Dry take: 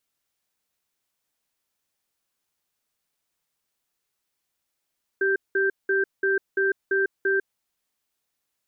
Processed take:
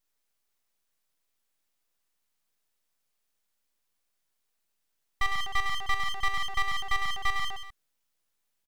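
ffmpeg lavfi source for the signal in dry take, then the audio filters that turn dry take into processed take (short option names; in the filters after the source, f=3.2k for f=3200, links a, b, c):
-f lavfi -i "aevalsrc='0.0794*(sin(2*PI*389*t)+sin(2*PI*1570*t))*clip(min(mod(t,0.34),0.15-mod(t,0.34))/0.005,0,1)':d=2.19:s=44100"
-filter_complex "[0:a]asplit=2[a][b];[b]aecho=0:1:50|105|165.5|232|305.3:0.631|0.398|0.251|0.158|0.1[c];[a][c]amix=inputs=2:normalize=0,aeval=exprs='abs(val(0))':c=same"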